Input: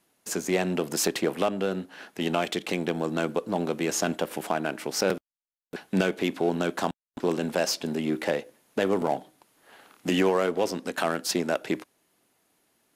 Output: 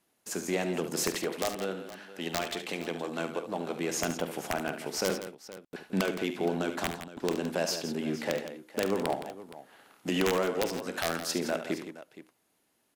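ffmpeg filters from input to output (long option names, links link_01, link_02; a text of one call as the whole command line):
ffmpeg -i in.wav -filter_complex "[0:a]asettb=1/sr,asplit=3[link_01][link_02][link_03];[link_01]atrim=end=1.224[link_04];[link_02]atrim=start=1.22:end=3.76,asetpts=PTS-STARTPTS,afade=type=in:duration=0.004:curve=qsin,afade=type=out:start_time=2.536:duration=0.004:curve=qsin,lowshelf=frequency=290:gain=-7.5[link_05];[link_03]atrim=start=3.756[link_06];[link_04][link_05]acrossfade=duration=0.004:curve1=hsin:curve2=qsin[link_07];[link_07][link_06]acrossfade=duration=0.004:curve1=qsin:curve2=hsin,aeval=exprs='(mod(4.22*val(0)+1,2)-1)/4.22':channel_layout=same,aecho=1:1:47|72|167|469:0.188|0.316|0.282|0.158,volume=-5dB" out.wav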